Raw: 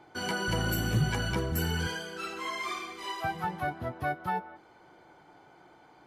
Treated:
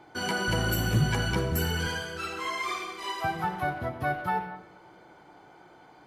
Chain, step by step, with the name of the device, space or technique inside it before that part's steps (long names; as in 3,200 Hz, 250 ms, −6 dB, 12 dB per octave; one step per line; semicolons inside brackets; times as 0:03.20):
saturated reverb return (on a send at −8 dB: convolution reverb RT60 1.0 s, pre-delay 52 ms + soft clipping −27.5 dBFS, distortion −12 dB)
on the sum: level +2.5 dB